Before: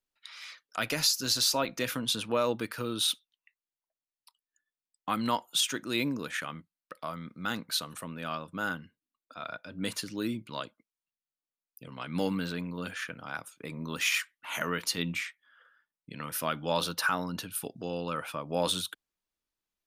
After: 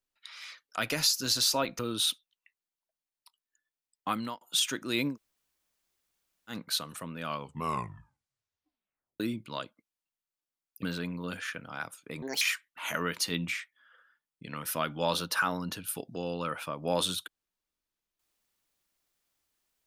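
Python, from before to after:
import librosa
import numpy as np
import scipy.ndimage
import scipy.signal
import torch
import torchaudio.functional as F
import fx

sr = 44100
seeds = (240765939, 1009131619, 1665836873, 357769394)

y = fx.edit(x, sr, fx.cut(start_s=1.79, length_s=1.01),
    fx.fade_out_span(start_s=5.11, length_s=0.31),
    fx.room_tone_fill(start_s=6.14, length_s=1.39, crossfade_s=0.1),
    fx.tape_stop(start_s=8.23, length_s=1.98),
    fx.cut(start_s=11.84, length_s=0.53),
    fx.speed_span(start_s=13.76, length_s=0.32, speed=1.66), tone=tone)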